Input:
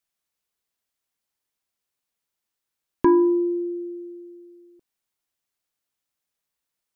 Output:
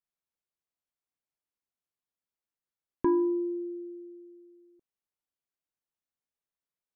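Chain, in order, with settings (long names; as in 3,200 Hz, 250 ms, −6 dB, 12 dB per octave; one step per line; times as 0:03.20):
high-shelf EQ 2,000 Hz −9.5 dB
level −8 dB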